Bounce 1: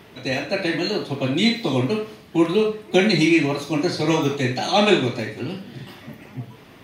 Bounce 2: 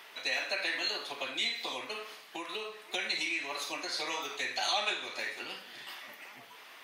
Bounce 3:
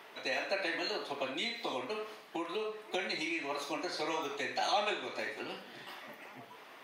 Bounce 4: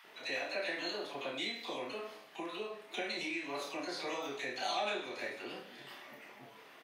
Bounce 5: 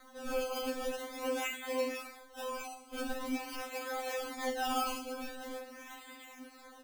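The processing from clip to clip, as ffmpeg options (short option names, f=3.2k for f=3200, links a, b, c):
-af "acompressor=threshold=-24dB:ratio=6,highpass=1k"
-af "tiltshelf=f=1.2k:g=7"
-filter_complex "[0:a]asoftclip=type=tanh:threshold=-19.5dB,asplit=2[a][b];[b]adelay=29,volume=-5.5dB[c];[a][c]amix=inputs=2:normalize=0,acrossover=split=1000[d][e];[d]adelay=40[f];[f][e]amix=inputs=2:normalize=0,volume=-3dB"
-af "acrusher=samples=16:mix=1:aa=0.000001:lfo=1:lforange=16:lforate=0.45,afftfilt=real='re*3.46*eq(mod(b,12),0)':imag='im*3.46*eq(mod(b,12),0)':win_size=2048:overlap=0.75,volume=4.5dB"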